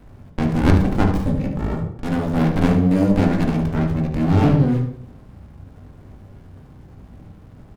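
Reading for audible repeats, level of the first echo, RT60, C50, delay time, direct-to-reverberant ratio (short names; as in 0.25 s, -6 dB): 1, -10.0 dB, 0.60 s, 6.0 dB, 73 ms, 0.5 dB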